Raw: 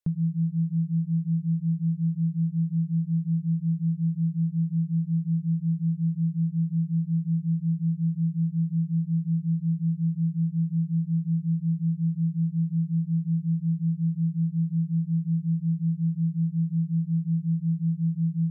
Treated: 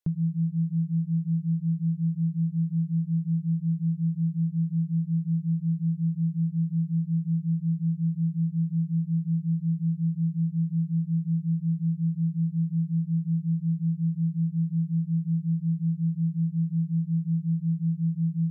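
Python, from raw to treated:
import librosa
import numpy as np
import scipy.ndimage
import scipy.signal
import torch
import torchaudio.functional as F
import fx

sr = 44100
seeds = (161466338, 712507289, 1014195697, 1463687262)

y = fx.dynamic_eq(x, sr, hz=240.0, q=4.7, threshold_db=-49.0, ratio=4.0, max_db=-8)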